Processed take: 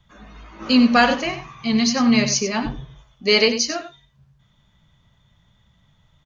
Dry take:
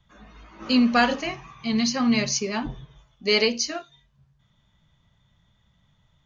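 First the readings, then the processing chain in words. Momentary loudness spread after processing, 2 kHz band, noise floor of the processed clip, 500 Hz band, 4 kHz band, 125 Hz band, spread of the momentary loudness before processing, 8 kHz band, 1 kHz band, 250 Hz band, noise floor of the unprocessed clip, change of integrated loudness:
15 LU, +5.0 dB, -61 dBFS, +4.5 dB, +5.0 dB, +5.5 dB, 13 LU, no reading, +5.0 dB, +4.5 dB, -66 dBFS, +4.5 dB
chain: delay 94 ms -11 dB; trim +4.5 dB

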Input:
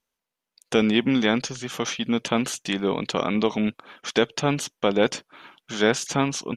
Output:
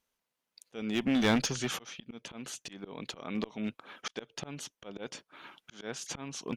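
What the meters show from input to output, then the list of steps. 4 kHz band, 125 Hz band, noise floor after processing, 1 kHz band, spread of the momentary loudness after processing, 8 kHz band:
-10.5 dB, -10.5 dB, under -85 dBFS, -13.0 dB, 18 LU, -8.0 dB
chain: slow attack 729 ms; one-sided clip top -25.5 dBFS

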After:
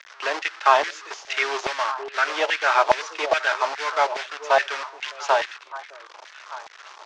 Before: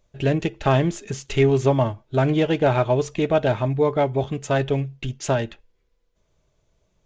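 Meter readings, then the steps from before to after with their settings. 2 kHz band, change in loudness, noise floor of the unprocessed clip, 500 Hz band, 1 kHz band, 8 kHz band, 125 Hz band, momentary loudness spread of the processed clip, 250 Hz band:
+8.5 dB, -1.0 dB, -69 dBFS, -5.0 dB, +6.0 dB, +0.5 dB, under -35 dB, 19 LU, -21.0 dB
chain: one-bit delta coder 64 kbps, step -31.5 dBFS; in parallel at -5.5 dB: bit crusher 4-bit; on the sum: Chebyshev band-pass 340–5700 Hz, order 3; on a send: repeats whose band climbs or falls 609 ms, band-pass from 430 Hz, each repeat 1.4 oct, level -9.5 dB; on the sum: LFO high-pass saw down 2.4 Hz 770–1900 Hz; tape noise reduction on one side only decoder only

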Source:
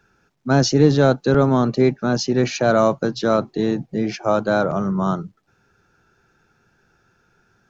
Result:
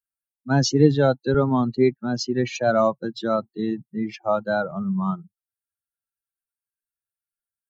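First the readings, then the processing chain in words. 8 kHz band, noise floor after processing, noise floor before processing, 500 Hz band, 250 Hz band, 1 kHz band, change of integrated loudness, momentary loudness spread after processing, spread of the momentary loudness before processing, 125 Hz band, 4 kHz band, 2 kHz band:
no reading, under -85 dBFS, -63 dBFS, -3.5 dB, -3.5 dB, -4.0 dB, -3.5 dB, 11 LU, 8 LU, -4.0 dB, -4.0 dB, -4.0 dB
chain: expander on every frequency bin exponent 2

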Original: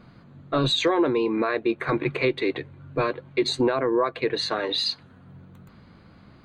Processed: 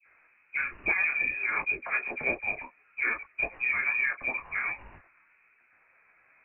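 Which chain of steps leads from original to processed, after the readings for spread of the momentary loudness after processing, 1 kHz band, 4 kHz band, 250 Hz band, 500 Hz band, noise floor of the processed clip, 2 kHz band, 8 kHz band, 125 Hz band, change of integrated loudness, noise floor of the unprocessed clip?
8 LU, -10.0 dB, under -35 dB, -22.5 dB, -19.5 dB, -65 dBFS, +6.0 dB, under -35 dB, -21.5 dB, -4.0 dB, -52 dBFS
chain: local Wiener filter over 9 samples; high-pass 370 Hz 24 dB/octave; phase dispersion highs, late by 64 ms, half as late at 900 Hz; short-mantissa float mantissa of 2-bit; frequency inversion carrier 2.8 kHz; detune thickener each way 21 cents

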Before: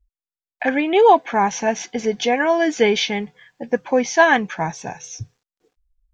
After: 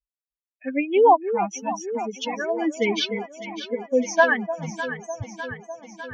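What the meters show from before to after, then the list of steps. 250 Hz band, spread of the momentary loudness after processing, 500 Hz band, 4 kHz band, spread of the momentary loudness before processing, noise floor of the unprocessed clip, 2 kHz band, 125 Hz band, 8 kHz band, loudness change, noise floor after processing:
-5.0 dB, 17 LU, -4.0 dB, -5.0 dB, 18 LU, under -85 dBFS, -5.0 dB, -4.0 dB, no reading, -5.0 dB, under -85 dBFS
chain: expander on every frequency bin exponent 3; echo whose repeats swap between lows and highs 301 ms, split 800 Hz, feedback 80%, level -9 dB

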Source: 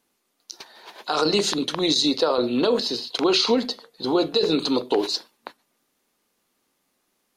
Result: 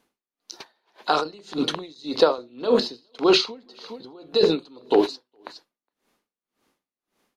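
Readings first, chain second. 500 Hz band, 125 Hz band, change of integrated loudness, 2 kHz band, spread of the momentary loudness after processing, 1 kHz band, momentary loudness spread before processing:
+0.5 dB, -3.5 dB, -1.0 dB, -0.5 dB, 21 LU, +0.5 dB, 11 LU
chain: treble shelf 5.1 kHz -9.5 dB; on a send: delay 414 ms -20.5 dB; on the sum: logarithmic tremolo 1.8 Hz, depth 31 dB; trim +5.5 dB

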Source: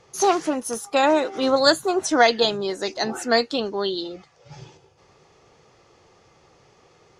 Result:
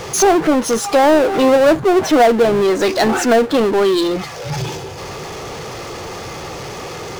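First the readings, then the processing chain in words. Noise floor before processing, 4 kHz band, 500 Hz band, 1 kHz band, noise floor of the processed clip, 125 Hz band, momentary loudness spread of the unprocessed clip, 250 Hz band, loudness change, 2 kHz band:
-57 dBFS, +1.0 dB, +9.0 dB, +6.5 dB, -29 dBFS, +16.0 dB, 9 LU, +10.5 dB, +7.0 dB, +4.5 dB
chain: low-pass that closes with the level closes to 880 Hz, closed at -17 dBFS; power-law waveshaper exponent 0.5; trim +4 dB

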